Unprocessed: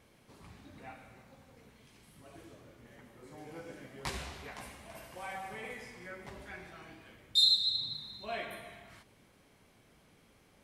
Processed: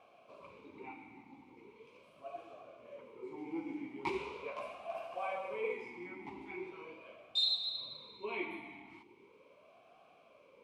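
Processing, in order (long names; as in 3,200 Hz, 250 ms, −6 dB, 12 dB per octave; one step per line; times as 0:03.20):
formant filter swept between two vowels a-u 0.4 Hz
level +14.5 dB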